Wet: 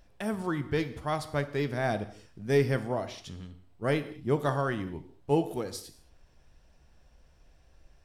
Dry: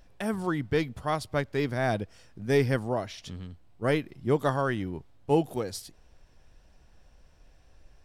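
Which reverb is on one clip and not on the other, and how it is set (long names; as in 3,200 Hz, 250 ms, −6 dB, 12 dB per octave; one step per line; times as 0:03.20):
reverb whose tail is shaped and stops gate 250 ms falling, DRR 10 dB
level −2.5 dB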